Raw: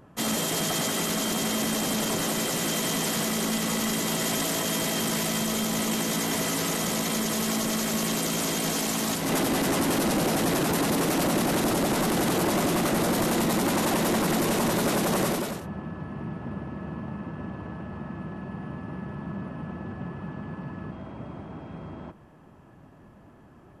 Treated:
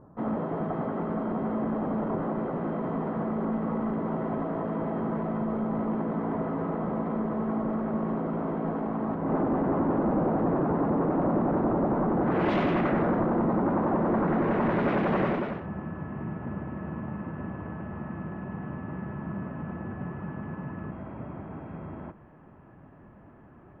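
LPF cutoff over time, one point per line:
LPF 24 dB/oct
12.21 s 1200 Hz
12.53 s 3200 Hz
13.28 s 1300 Hz
14.02 s 1300 Hz
14.88 s 2300 Hz

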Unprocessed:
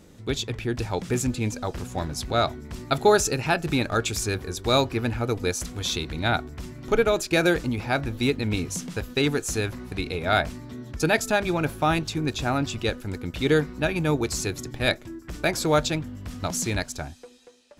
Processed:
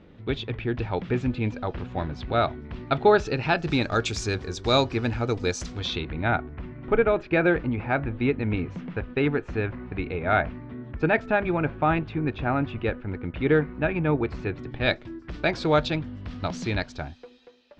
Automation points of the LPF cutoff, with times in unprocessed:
LPF 24 dB/oct
3.13 s 3300 Hz
3.83 s 6100 Hz
5.67 s 6100 Hz
6.15 s 2500 Hz
14.53 s 2500 Hz
14.96 s 4200 Hz

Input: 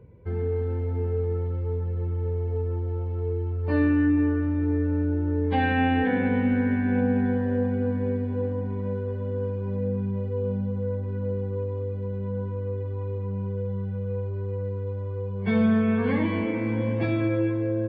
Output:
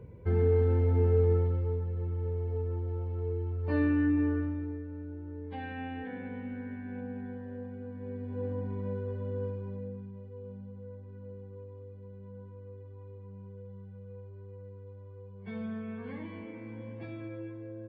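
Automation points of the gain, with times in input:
1.32 s +2 dB
1.87 s -5.5 dB
4.39 s -5.5 dB
4.85 s -16.5 dB
7.91 s -16.5 dB
8.52 s -6 dB
9.45 s -6 dB
10.12 s -17 dB

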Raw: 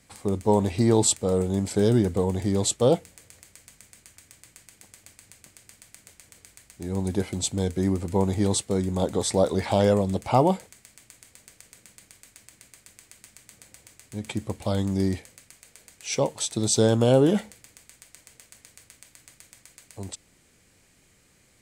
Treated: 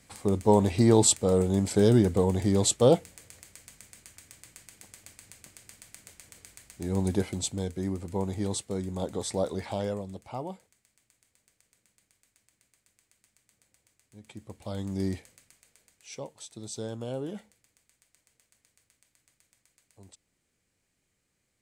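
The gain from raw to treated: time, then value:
7.08 s 0 dB
7.73 s -7.5 dB
9.49 s -7.5 dB
10.35 s -17 dB
14.22 s -17 dB
15.09 s -5 dB
16.3 s -16.5 dB

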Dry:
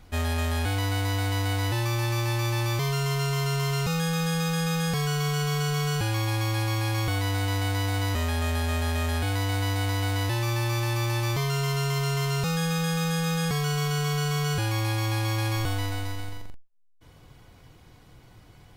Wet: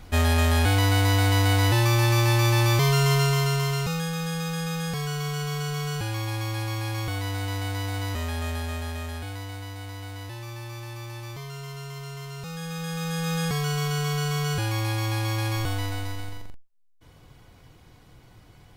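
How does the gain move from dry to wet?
3.14 s +6 dB
4.12 s -3 dB
8.48 s -3 dB
9.69 s -11 dB
12.36 s -11 dB
13.36 s 0 dB

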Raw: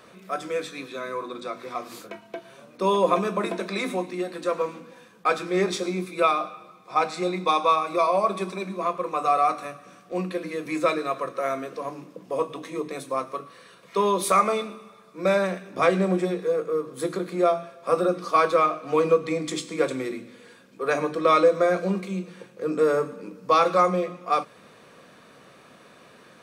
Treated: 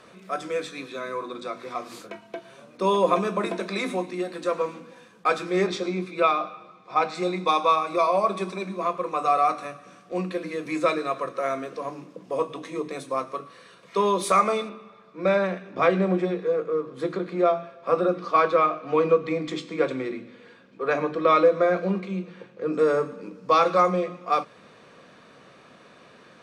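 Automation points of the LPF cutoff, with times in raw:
10000 Hz
from 5.67 s 4800 Hz
from 7.15 s 8900 Hz
from 14.69 s 3700 Hz
from 22.74 s 6600 Hz

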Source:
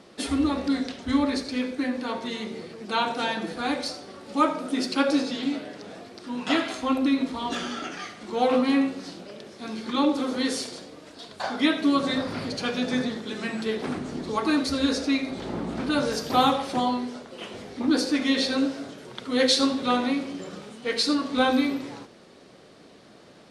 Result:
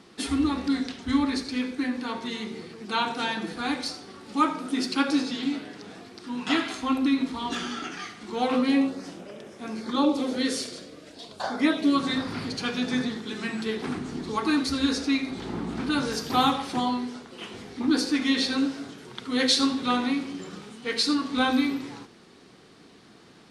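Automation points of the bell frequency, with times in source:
bell -11.5 dB 0.42 oct
8.56 s 580 Hz
9.08 s 4300 Hz
9.65 s 4300 Hz
10.49 s 850 Hz
11 s 850 Hz
11.65 s 3600 Hz
11.98 s 580 Hz

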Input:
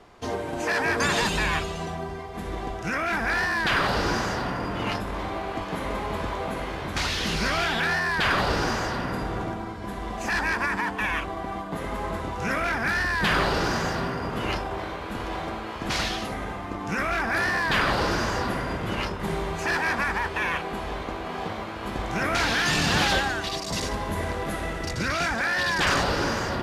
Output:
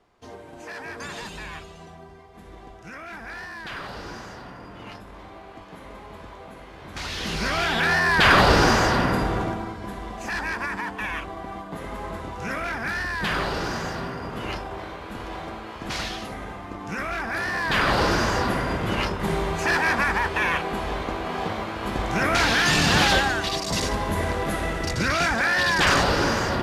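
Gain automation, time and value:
6.71 s -12 dB
7.18 s -3 dB
8.36 s +8 dB
9.02 s +8 dB
10.16 s -3 dB
17.45 s -3 dB
17.98 s +3.5 dB

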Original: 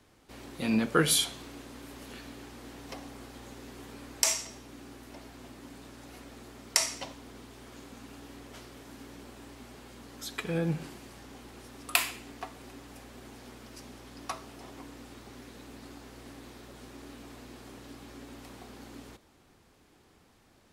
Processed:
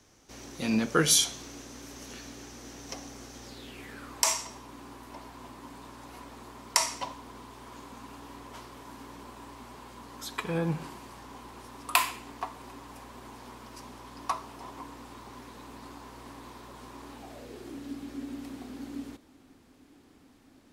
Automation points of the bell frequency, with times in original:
bell +13.5 dB 0.41 oct
3.41 s 6000 Hz
4.16 s 1000 Hz
17.11 s 1000 Hz
17.79 s 270 Hz

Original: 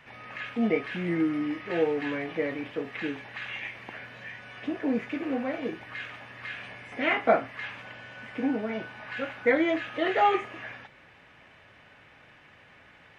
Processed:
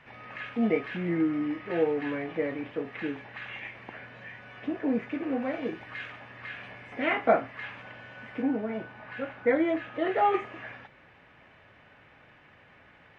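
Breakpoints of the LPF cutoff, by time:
LPF 6 dB/oct
2700 Hz
from 0.97 s 1900 Hz
from 5.42 s 3700 Hz
from 6.12 s 2300 Hz
from 8.42 s 1200 Hz
from 10.34 s 2300 Hz

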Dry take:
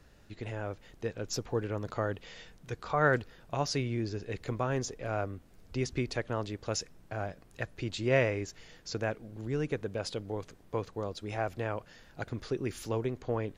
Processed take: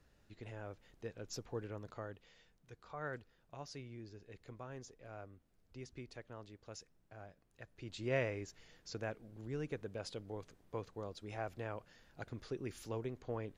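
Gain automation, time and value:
1.68 s -10.5 dB
2.38 s -17.5 dB
7.63 s -17.5 dB
8.03 s -9 dB

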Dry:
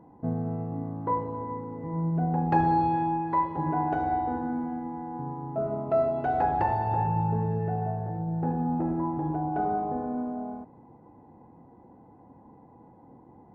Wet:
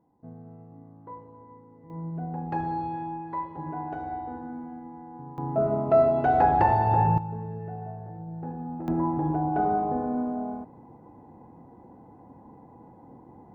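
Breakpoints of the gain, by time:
-15 dB
from 1.9 s -7 dB
from 5.38 s +5 dB
from 7.18 s -7.5 dB
from 8.88 s +3 dB

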